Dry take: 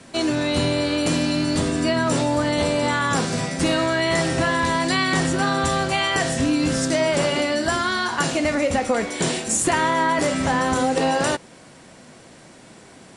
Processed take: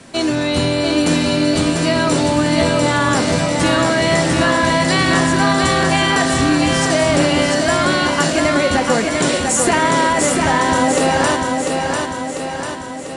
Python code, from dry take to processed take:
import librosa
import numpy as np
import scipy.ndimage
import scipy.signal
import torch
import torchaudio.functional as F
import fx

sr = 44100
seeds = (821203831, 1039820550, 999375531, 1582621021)

y = fx.echo_feedback(x, sr, ms=695, feedback_pct=57, wet_db=-4.0)
y = y * 10.0 ** (4.0 / 20.0)